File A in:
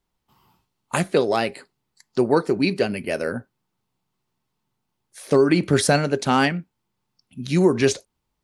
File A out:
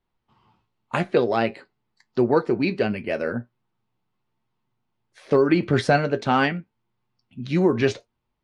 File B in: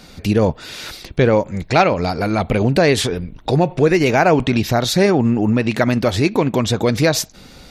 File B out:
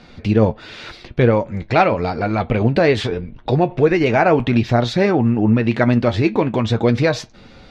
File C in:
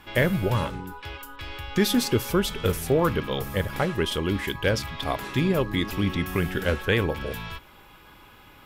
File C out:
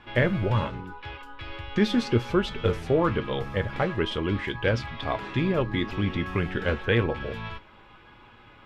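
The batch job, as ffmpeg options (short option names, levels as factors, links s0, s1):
-af "lowpass=3300,flanger=delay=8.3:depth=1:regen=59:speed=0.85:shape=sinusoidal,volume=1.5"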